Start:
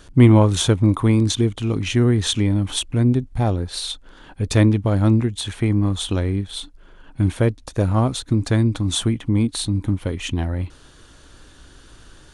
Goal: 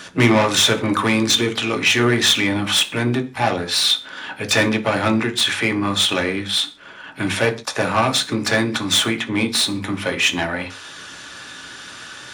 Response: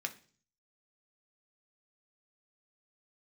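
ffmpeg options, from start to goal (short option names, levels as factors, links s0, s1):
-filter_complex "[0:a]asplit=2[s0][s1];[s1]asetrate=55563,aresample=44100,atempo=0.793701,volume=0.126[s2];[s0][s2]amix=inputs=2:normalize=0,acrossover=split=340[s3][s4];[s3]acompressor=mode=upward:threshold=0.0501:ratio=2.5[s5];[s4]asplit=2[s6][s7];[s7]highpass=f=720:p=1,volume=15.8,asoftclip=type=tanh:threshold=0.631[s8];[s6][s8]amix=inputs=2:normalize=0,lowpass=f=8000:p=1,volume=0.501[s9];[s5][s9]amix=inputs=2:normalize=0,highpass=72[s10];[1:a]atrim=start_sample=2205,afade=t=out:st=0.21:d=0.01,atrim=end_sample=9702[s11];[s10][s11]afir=irnorm=-1:irlink=0,volume=0.75"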